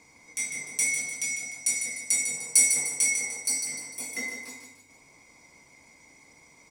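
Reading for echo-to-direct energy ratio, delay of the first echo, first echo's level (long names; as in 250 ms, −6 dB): −6.0 dB, 150 ms, −7.0 dB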